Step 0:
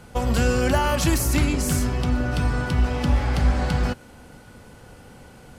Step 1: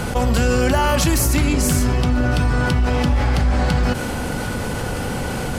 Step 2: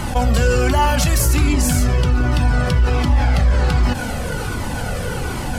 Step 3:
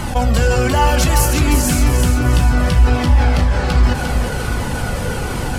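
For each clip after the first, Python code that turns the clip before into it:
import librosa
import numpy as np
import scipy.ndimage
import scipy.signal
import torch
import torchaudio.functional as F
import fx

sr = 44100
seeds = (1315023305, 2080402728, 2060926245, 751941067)

y1 = fx.env_flatten(x, sr, amount_pct=70)
y2 = fx.comb_cascade(y1, sr, direction='falling', hz=1.3)
y2 = F.gain(torch.from_numpy(y2), 4.5).numpy()
y3 = fx.echo_feedback(y2, sr, ms=351, feedback_pct=48, wet_db=-6)
y3 = F.gain(torch.from_numpy(y3), 1.0).numpy()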